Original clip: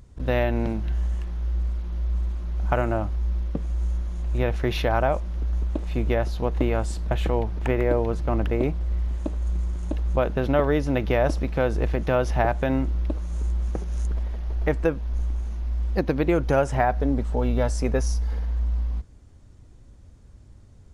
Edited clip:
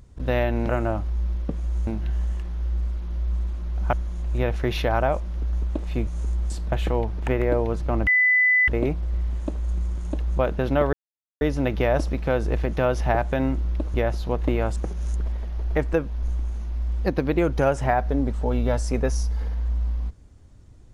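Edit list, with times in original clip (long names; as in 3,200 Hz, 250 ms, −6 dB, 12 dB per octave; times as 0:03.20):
0:02.75–0:03.93: move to 0:00.69
0:06.07–0:06.89: swap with 0:13.24–0:13.67
0:08.46: insert tone 2,000 Hz −15 dBFS 0.61 s
0:10.71: splice in silence 0.48 s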